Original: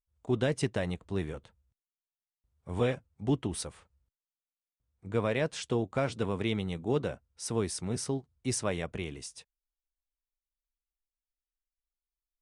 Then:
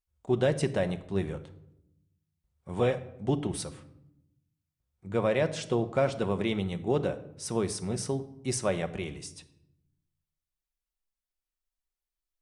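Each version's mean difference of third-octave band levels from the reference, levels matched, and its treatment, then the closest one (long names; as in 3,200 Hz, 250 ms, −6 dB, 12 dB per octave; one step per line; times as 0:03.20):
3.5 dB: dynamic equaliser 620 Hz, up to +5 dB, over −41 dBFS, Q 1.3
rectangular room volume 2,300 cubic metres, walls furnished, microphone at 1 metre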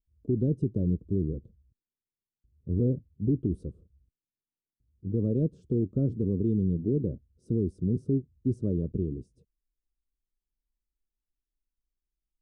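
14.0 dB: inverse Chebyshev low-pass filter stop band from 760 Hz, stop band 40 dB
brickwall limiter −26.5 dBFS, peak gain reduction 7.5 dB
level +9 dB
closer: first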